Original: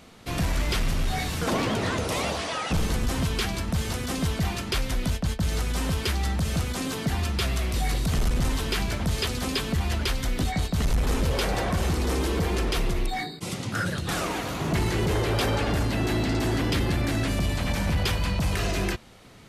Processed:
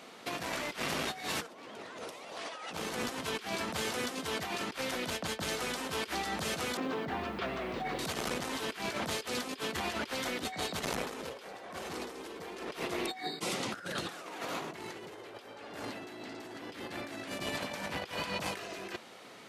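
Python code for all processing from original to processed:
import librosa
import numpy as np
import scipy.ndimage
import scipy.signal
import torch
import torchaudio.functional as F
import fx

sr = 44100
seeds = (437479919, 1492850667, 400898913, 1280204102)

y = fx.chain(x, sr, fx.spacing_loss(db_at_10k=34),
    fx.quant_dither(seeds[0], bits=10, dither='none'), at=(6.77, 7.99))
y = scipy.signal.sosfilt(scipy.signal.butter(2, 340.0, 'highpass', fs=sr, output='sos'), y)
y = fx.high_shelf(y, sr, hz=5700.0, db=-5.5)
y = fx.over_compress(y, sr, threshold_db=-36.0, ratio=-0.5)
y = y * 10.0 ** (-1.5 / 20.0)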